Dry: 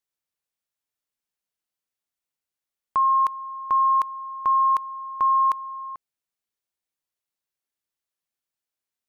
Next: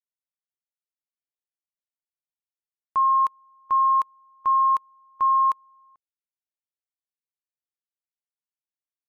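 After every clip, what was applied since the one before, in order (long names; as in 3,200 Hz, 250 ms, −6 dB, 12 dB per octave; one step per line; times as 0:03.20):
expander for the loud parts 2.5 to 1, over −33 dBFS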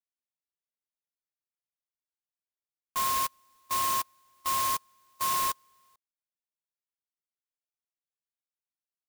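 converter with an unsteady clock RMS 0.099 ms
level −8.5 dB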